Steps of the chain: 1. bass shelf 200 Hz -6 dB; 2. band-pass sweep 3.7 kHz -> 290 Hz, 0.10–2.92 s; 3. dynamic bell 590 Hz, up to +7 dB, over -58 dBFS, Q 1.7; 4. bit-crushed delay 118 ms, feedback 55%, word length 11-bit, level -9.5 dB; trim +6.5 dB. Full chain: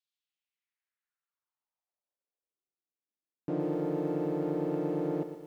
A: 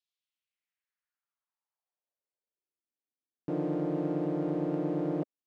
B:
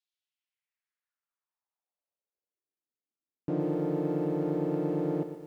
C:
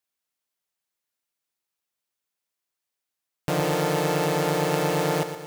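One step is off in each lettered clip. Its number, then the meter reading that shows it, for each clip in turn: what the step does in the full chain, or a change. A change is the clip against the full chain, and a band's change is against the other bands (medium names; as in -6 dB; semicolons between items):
4, 125 Hz band +2.0 dB; 1, 125 Hz band +3.0 dB; 2, 2 kHz band +14.0 dB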